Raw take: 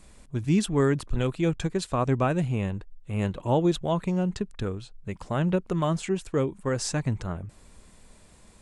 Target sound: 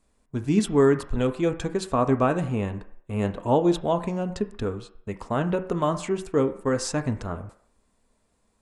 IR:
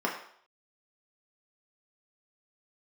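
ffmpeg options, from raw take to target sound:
-filter_complex "[0:a]agate=range=-16dB:threshold=-42dB:ratio=16:detection=peak,asplit=2[link_01][link_02];[1:a]atrim=start_sample=2205,lowpass=2800[link_03];[link_02][link_03]afir=irnorm=-1:irlink=0,volume=-13.5dB[link_04];[link_01][link_04]amix=inputs=2:normalize=0"

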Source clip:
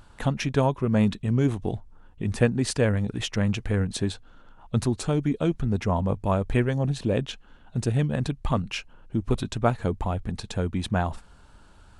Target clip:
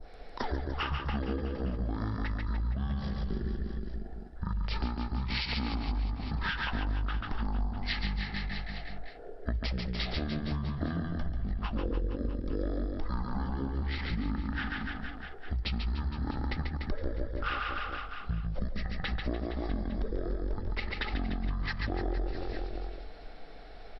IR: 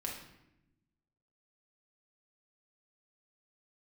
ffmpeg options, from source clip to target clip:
-filter_complex "[0:a]equalizer=frequency=220:width=1.3:gain=-13,acrossover=split=150|3000[link_01][link_02][link_03];[link_02]acompressor=threshold=-33dB:ratio=2.5[link_04];[link_01][link_04][link_03]amix=inputs=3:normalize=0,aecho=1:1:70|147|231.7|324.9|427.4:0.631|0.398|0.251|0.158|0.1,adynamicequalizer=threshold=0.00501:dfrequency=5400:dqfactor=0.76:tfrequency=5400:tqfactor=0.76:attack=5:release=100:ratio=0.375:range=2:mode=cutabove:tftype=bell,asetrate=22050,aresample=44100,acompressor=threshold=-35dB:ratio=5,asplit=2[link_05][link_06];[1:a]atrim=start_sample=2205[link_07];[link_06][link_07]afir=irnorm=-1:irlink=0,volume=-20dB[link_08];[link_05][link_08]amix=inputs=2:normalize=0,volume=5dB"

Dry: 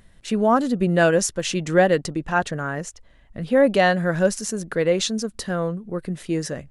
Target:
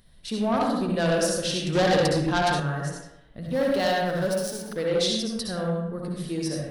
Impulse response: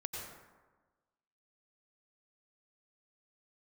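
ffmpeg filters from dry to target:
-filter_complex "[0:a]asettb=1/sr,asplit=3[link_01][link_02][link_03];[link_01]atrim=end=3.454[link_04];[link_02]atrim=start=3.45:end=4.77,asetpts=PTS-STARTPTS,afade=type=in:duration=0.004:curve=qsin,afade=type=out:start_time=1.316:duration=0.004:curve=qsin,aeval=exprs='sgn(val(0))*max(abs(val(0))-0.0178,0)':channel_layout=same[link_05];[link_03]atrim=start=4.766[link_06];[link_04][link_05]acrossfade=duration=0.004:curve1=hsin:curve2=qsin[link_07];[link_07][link_06]acrossfade=duration=0.004:curve1=qsin:curve2=hsin,equalizer=frequency=7000:width_type=o:width=0.44:gain=-13.5[link_08];[1:a]atrim=start_sample=2205,asetrate=66150,aresample=44100[link_09];[link_08][link_09]afir=irnorm=-1:irlink=0,asettb=1/sr,asplit=3[link_10][link_11][link_12];[link_10]atrim=end=1.754[link_13];[link_11]atrim=start=1.75:end=2.6,asetpts=PTS-STARTPTS,afade=type=in:duration=0.004:curve=qsin,afade=type=out:start_time=0.846:duration=0.004:curve=qsin,acontrast=44[link_14];[link_12]atrim=start=2.596[link_15];[link_13][link_14]acrossfade=duration=0.004:curve1=hsin:curve2=qsin[link_16];[link_16][link_15]acrossfade=duration=0.004:curve1=qsin:curve2=hsin,asoftclip=type=tanh:threshold=-17dB,highshelf=frequency=3100:width_type=q:width=1.5:gain=8"

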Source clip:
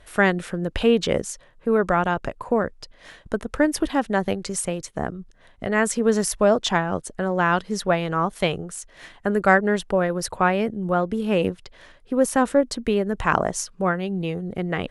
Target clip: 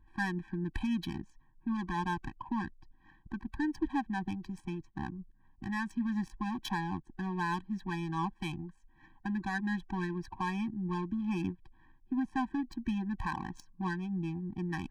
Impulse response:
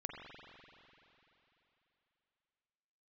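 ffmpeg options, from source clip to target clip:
-af "alimiter=limit=-11.5dB:level=0:latency=1:release=85,adynamicsmooth=sensitivity=2:basefreq=980,afftfilt=real='re*eq(mod(floor(b*sr/1024/380),2),0)':imag='im*eq(mod(floor(b*sr/1024/380),2),0)':win_size=1024:overlap=0.75,volume=-7.5dB"

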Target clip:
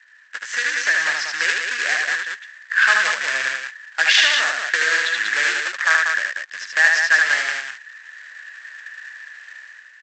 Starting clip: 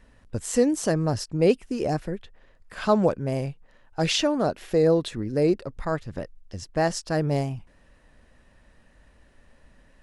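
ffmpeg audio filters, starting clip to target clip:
ffmpeg -i in.wav -filter_complex "[0:a]asplit=2[link_01][link_02];[link_02]aeval=exprs='sgn(val(0))*max(abs(val(0))-0.0126,0)':channel_layout=same,volume=-7.5dB[link_03];[link_01][link_03]amix=inputs=2:normalize=0,lowpass=5300,aresample=16000,acrusher=bits=2:mode=log:mix=0:aa=0.000001,aresample=44100,acompressor=threshold=-20dB:ratio=6,aecho=1:1:75.8|189.5:0.708|0.562,dynaudnorm=framelen=140:gausssize=9:maxgain=11.5dB,highpass=frequency=1700:width_type=q:width=8.7,volume=-1dB" out.wav

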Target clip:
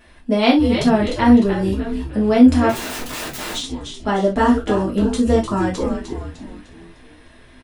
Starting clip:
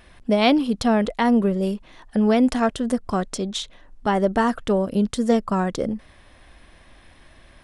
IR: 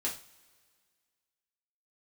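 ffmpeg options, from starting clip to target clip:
-filter_complex "[0:a]asplit=6[link_01][link_02][link_03][link_04][link_05][link_06];[link_02]adelay=302,afreqshift=-130,volume=-7dB[link_07];[link_03]adelay=604,afreqshift=-260,volume=-14.1dB[link_08];[link_04]adelay=906,afreqshift=-390,volume=-21.3dB[link_09];[link_05]adelay=1208,afreqshift=-520,volume=-28.4dB[link_10];[link_06]adelay=1510,afreqshift=-650,volume=-35.5dB[link_11];[link_01][link_07][link_08][link_09][link_10][link_11]amix=inputs=6:normalize=0,asettb=1/sr,asplit=3[link_12][link_13][link_14];[link_12]atrim=end=2.694[link_15];[link_13]atrim=start=2.69:end=3.55,asetpts=PTS-STARTPTS,afade=type=in:duration=0.004:curve=qsin,afade=type=out:start_time=0.856:duration=0.004:curve=qsin,aeval=exprs='(mod(17.8*val(0)+1,2)-1)/17.8':channel_layout=same[link_16];[link_14]atrim=start=3.546[link_17];[link_15][link_16]acrossfade=duration=0.004:curve1=hsin:curve2=qsin[link_18];[link_18][link_17]acrossfade=duration=0.004:curve1=qsin:curve2=hsin[link_19];[1:a]atrim=start_sample=2205,atrim=end_sample=3528[link_20];[link_19][link_20]afir=irnorm=-1:irlink=0,volume=-1dB"

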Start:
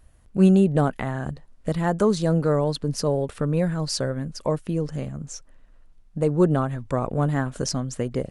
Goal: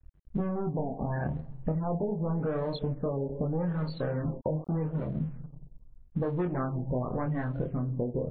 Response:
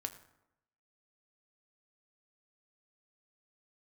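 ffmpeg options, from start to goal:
-filter_complex "[0:a]asoftclip=type=tanh:threshold=-22.5dB,asettb=1/sr,asplit=3[link_01][link_02][link_03];[link_01]atrim=end=6.314[link_04];[link_02]atrim=start=6.31:end=7.22,asetpts=PTS-STARTPTS,afade=type=in:duration=0.004:curve=qsin,afade=type=out:start_time=0.906:duration=0.004:curve=qsin,equalizer=frequency=4300:width=0.73:gain=9[link_05];[link_03]atrim=start=7.216[link_06];[link_04][link_05]acrossfade=duration=0.004:curve1=hsin:curve2=qsin[link_07];[link_07][link_06]acrossfade=duration=0.004:curve1=qsin:curve2=hsin,asplit=2[link_08][link_09];[1:a]atrim=start_sample=2205,asetrate=24255,aresample=44100[link_10];[link_09][link_10]afir=irnorm=-1:irlink=0,volume=4dB[link_11];[link_08][link_11]amix=inputs=2:normalize=0,asettb=1/sr,asplit=3[link_12][link_13][link_14];[link_12]atrim=end=3.674[link_15];[link_13]atrim=start=3.67:end=5.08,asetpts=PTS-STARTPTS,afade=type=in:duration=0.004:curve=qsin,afade=type=out:start_time=1.406:duration=0.004:curve=qsin,acrusher=bits=3:mix=0:aa=0.5[link_16];[link_14]atrim=start=5.076[link_17];[link_15][link_16]acrossfade=duration=0.004:curve1=hsin:curve2=qsin[link_18];[link_18][link_17]acrossfade=duration=0.004:curve1=qsin:curve2=hsin,afftdn=noise_reduction=19:noise_floor=-27,flanger=delay=22.5:depth=2.6:speed=0.32,acompressor=threshold=-29dB:ratio=16,aeval=exprs='sgn(val(0))*max(abs(val(0))-0.00188,0)':channel_layout=same,aemphasis=mode=reproduction:type=50kf,afftfilt=real='re*lt(b*sr/1024,970*pow(4600/970,0.5+0.5*sin(2*PI*0.83*pts/sr)))':imag='im*lt(b*sr/1024,970*pow(4600/970,0.5+0.5*sin(2*PI*0.83*pts/sr)))':win_size=1024:overlap=0.75,volume=2.5dB"

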